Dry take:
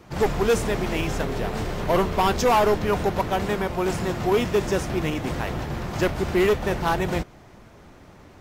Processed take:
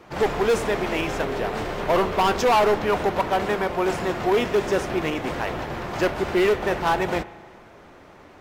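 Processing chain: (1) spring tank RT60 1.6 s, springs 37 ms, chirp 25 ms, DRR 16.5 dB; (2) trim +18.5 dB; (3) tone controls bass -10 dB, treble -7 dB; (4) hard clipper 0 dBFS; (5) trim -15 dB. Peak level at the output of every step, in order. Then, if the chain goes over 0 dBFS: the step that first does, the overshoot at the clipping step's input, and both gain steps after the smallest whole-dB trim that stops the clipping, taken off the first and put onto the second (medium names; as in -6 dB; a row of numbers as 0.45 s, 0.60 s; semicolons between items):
-12.0 dBFS, +6.5 dBFS, +8.0 dBFS, 0.0 dBFS, -15.0 dBFS; step 2, 8.0 dB; step 2 +10.5 dB, step 5 -7 dB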